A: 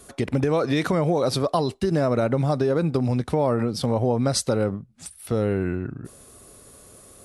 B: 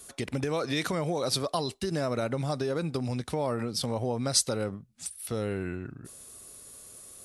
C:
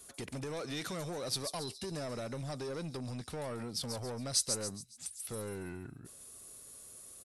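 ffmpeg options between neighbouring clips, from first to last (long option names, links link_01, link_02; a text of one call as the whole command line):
ffmpeg -i in.wav -af "highshelf=frequency=2100:gain=11.5,volume=-9dB" out.wav
ffmpeg -i in.wav -filter_complex "[0:a]acrossover=split=4300[link_01][link_02];[link_01]asoftclip=type=tanh:threshold=-30.5dB[link_03];[link_02]aecho=1:1:139|278|417|556|695|834:0.668|0.294|0.129|0.0569|0.0251|0.011[link_04];[link_03][link_04]amix=inputs=2:normalize=0,volume=-5.5dB" out.wav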